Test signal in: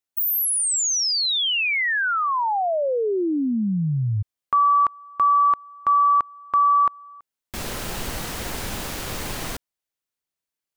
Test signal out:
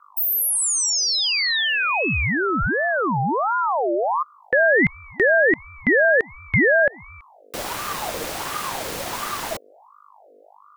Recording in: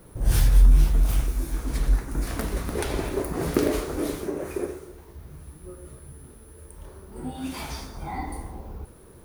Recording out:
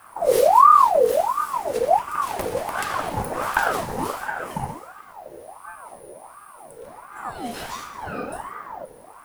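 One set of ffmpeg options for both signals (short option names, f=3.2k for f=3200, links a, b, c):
-af "aeval=exprs='val(0)+0.00282*(sin(2*PI*50*n/s)+sin(2*PI*2*50*n/s)/2+sin(2*PI*3*50*n/s)/3+sin(2*PI*4*50*n/s)/4+sin(2*PI*5*50*n/s)/5)':c=same,afreqshift=-24,aeval=exprs='val(0)*sin(2*PI*840*n/s+840*0.45/1.4*sin(2*PI*1.4*n/s))':c=same,volume=4dB"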